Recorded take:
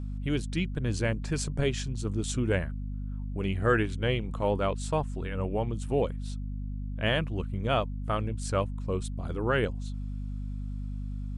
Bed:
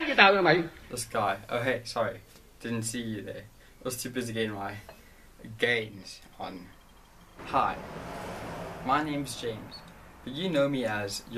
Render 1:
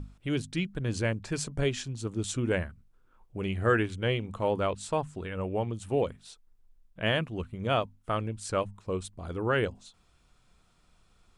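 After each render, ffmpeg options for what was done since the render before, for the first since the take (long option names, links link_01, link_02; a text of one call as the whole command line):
ffmpeg -i in.wav -af "bandreject=frequency=50:width_type=h:width=6,bandreject=frequency=100:width_type=h:width=6,bandreject=frequency=150:width_type=h:width=6,bandreject=frequency=200:width_type=h:width=6,bandreject=frequency=250:width_type=h:width=6" out.wav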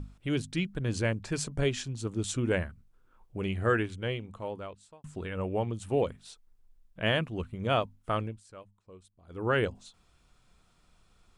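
ffmpeg -i in.wav -filter_complex "[0:a]asplit=4[link_01][link_02][link_03][link_04];[link_01]atrim=end=5.04,asetpts=PTS-STARTPTS,afade=type=out:start_time=3.42:duration=1.62[link_05];[link_02]atrim=start=5.04:end=8.43,asetpts=PTS-STARTPTS,afade=type=in:duration=0.004:curve=hsin,afade=type=out:start_time=3.17:duration=0.22:silence=0.105925[link_06];[link_03]atrim=start=8.43:end=9.27,asetpts=PTS-STARTPTS,volume=-19.5dB[link_07];[link_04]atrim=start=9.27,asetpts=PTS-STARTPTS,afade=type=in:duration=0.22:silence=0.105925[link_08];[link_05][link_06][link_07][link_08]concat=n=4:v=0:a=1" out.wav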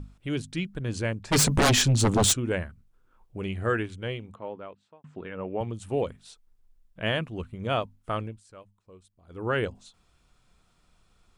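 ffmpeg -i in.wav -filter_complex "[0:a]asplit=3[link_01][link_02][link_03];[link_01]afade=type=out:start_time=1.31:duration=0.02[link_04];[link_02]aeval=exprs='0.15*sin(PI/2*5.01*val(0)/0.15)':channel_layout=same,afade=type=in:start_time=1.31:duration=0.02,afade=type=out:start_time=2.32:duration=0.02[link_05];[link_03]afade=type=in:start_time=2.32:duration=0.02[link_06];[link_04][link_05][link_06]amix=inputs=3:normalize=0,asettb=1/sr,asplit=3[link_07][link_08][link_09];[link_07]atrim=end=4.354[link_10];[link_08]atrim=start=4.35:end=5.61,asetpts=PTS-STARTPTS,afade=type=in:duration=0.004:curve=qsin,afade=type=out:start_time=1.256:duration=0.004:curve=qsin,highpass=160,lowpass=2600[link_11];[link_09]atrim=start=5.606[link_12];[link_10][link_11]acrossfade=duration=0.004:curve1=hsin:curve2=qsin[link_13];[link_13][link_12]acrossfade=duration=0.004:curve1=qsin:curve2=hsin" out.wav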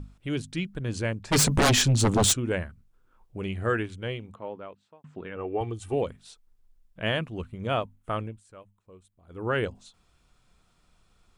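ffmpeg -i in.wav -filter_complex "[0:a]asettb=1/sr,asplit=3[link_01][link_02][link_03];[link_01]atrim=end=5.364[link_04];[link_02]atrim=start=5.36:end=5.94,asetpts=PTS-STARTPTS,afade=type=in:duration=0.004:curve=qsin,afade=type=out:start_time=0.576:duration=0.004:curve=qsin,aecho=1:1:2.6:0.65,atrim=end_sample=25578[link_05];[link_03]atrim=start=5.936[link_06];[link_04][link_05]acrossfade=duration=0.004:curve1=hsin:curve2=qsin[link_07];[link_07][link_06]acrossfade=duration=0.004:curve1=qsin:curve2=hsin,asettb=1/sr,asplit=3[link_08][link_09][link_10];[link_08]atrim=end=7.704[link_11];[link_09]atrim=start=7.7:end=9.55,asetpts=PTS-STARTPTS,afade=type=in:duration=0.004:curve=qsin,afade=type=out:start_time=1.846:duration=0.004:curve=qsin,equalizer=frequency=4900:width_type=o:width=0.71:gain=-6.5[link_12];[link_10]atrim=start=9.546[link_13];[link_11][link_12]acrossfade=duration=0.004:curve1=hsin:curve2=qsin[link_14];[link_14][link_13]acrossfade=duration=0.004:curve1=qsin:curve2=hsin" out.wav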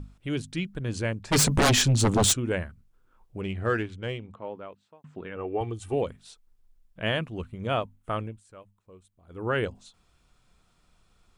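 ffmpeg -i in.wav -filter_complex "[0:a]asettb=1/sr,asplit=3[link_01][link_02][link_03];[link_01]atrim=end=3.414[link_04];[link_02]atrim=start=3.41:end=4.46,asetpts=PTS-STARTPTS,afade=type=in:duration=0.004:curve=qsin,afade=type=out:start_time=1.046:duration=0.004:curve=qsin,adynamicsmooth=sensitivity=8:basefreq=5900[link_05];[link_03]atrim=start=4.456[link_06];[link_04][link_05]acrossfade=duration=0.004:curve1=hsin:curve2=qsin[link_07];[link_07][link_06]acrossfade=duration=0.004:curve1=qsin:curve2=hsin" out.wav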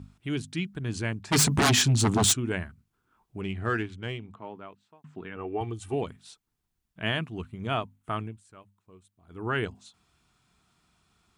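ffmpeg -i in.wav -af "highpass=80,equalizer=frequency=530:width_type=o:width=0.27:gain=-14" out.wav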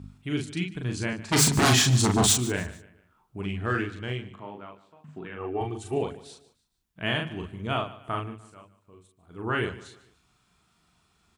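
ffmpeg -i in.wav -filter_complex "[0:a]asplit=2[link_01][link_02];[link_02]adelay=40,volume=-3.5dB[link_03];[link_01][link_03]amix=inputs=2:normalize=0,aecho=1:1:148|296|444:0.133|0.0507|0.0193" out.wav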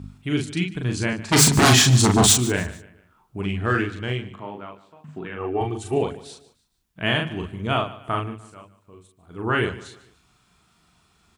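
ffmpeg -i in.wav -af "volume=5.5dB" out.wav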